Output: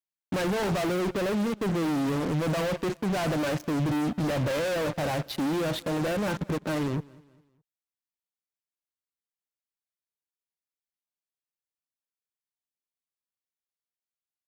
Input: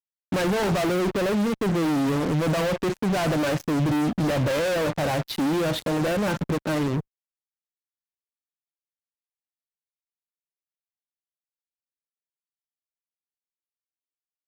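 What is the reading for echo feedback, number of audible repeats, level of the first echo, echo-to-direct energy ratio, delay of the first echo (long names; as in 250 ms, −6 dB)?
40%, 2, −23.5 dB, −23.0 dB, 204 ms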